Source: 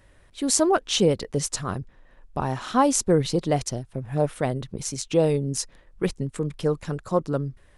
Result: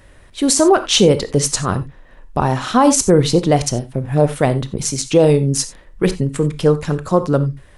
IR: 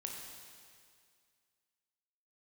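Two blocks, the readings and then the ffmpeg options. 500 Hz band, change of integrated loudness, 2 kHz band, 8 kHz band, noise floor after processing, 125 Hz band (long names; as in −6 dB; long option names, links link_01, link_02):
+9.0 dB, +9.0 dB, +8.5 dB, +8.0 dB, −45 dBFS, +10.0 dB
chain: -filter_complex "[0:a]asplit=2[link_01][link_02];[1:a]atrim=start_sample=2205,atrim=end_sample=4410[link_03];[link_02][link_03]afir=irnorm=-1:irlink=0,volume=0dB[link_04];[link_01][link_04]amix=inputs=2:normalize=0,alimiter=level_in=6.5dB:limit=-1dB:release=50:level=0:latency=1,volume=-1dB"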